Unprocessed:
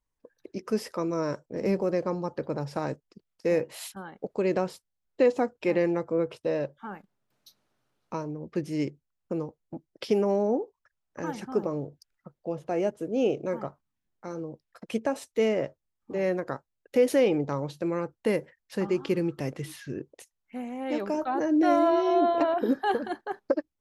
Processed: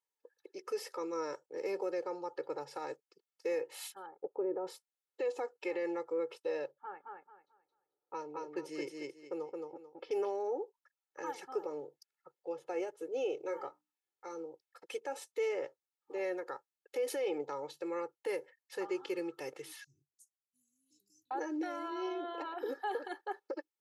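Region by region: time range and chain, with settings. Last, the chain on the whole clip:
4.06–4.67 s: low-pass 1.2 kHz 24 dB/octave + dynamic bell 260 Hz, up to +6 dB, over -38 dBFS, Q 0.81
6.71–10.31 s: level-controlled noise filter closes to 630 Hz, open at -26.5 dBFS + feedback delay 220 ms, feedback 26%, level -3 dB
13.41–14.46 s: hum notches 60/120/180/240/300 Hz + doubling 24 ms -9 dB
19.84–21.31 s: inverse Chebyshev band-stop 580–1800 Hz, stop band 80 dB + treble shelf 9 kHz -11 dB
whole clip: high-pass 450 Hz 12 dB/octave; peak limiter -23.5 dBFS; comb 2.3 ms, depth 97%; trim -8 dB

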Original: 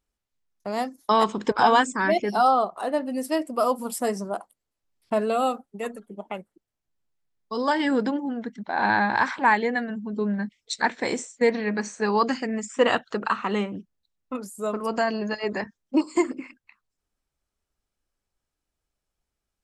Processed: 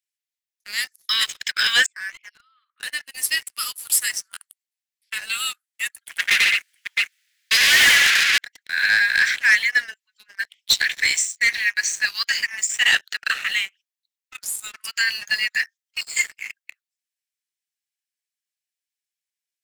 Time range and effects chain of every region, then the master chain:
1.86–2.83 s: compression 16:1, threshold -28 dBFS + steep high-pass 1 kHz 96 dB/octave + distance through air 460 m
6.06–8.38 s: hum notches 50/100/150/200/250/300/350 Hz + multi-tap echo 90/143/211/664 ms -3.5/-8.5/-13.5/-12.5 dB + overdrive pedal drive 37 dB, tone 2.4 kHz, clips at -10 dBFS
10.40–10.92 s: high-pass 640 Hz + compression, threshold -26 dBFS + peaking EQ 3.1 kHz +12 dB 0.68 oct
whole clip: steep high-pass 1.7 kHz 48 dB/octave; treble shelf 9.8 kHz +4.5 dB; waveshaping leveller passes 3; trim +3.5 dB

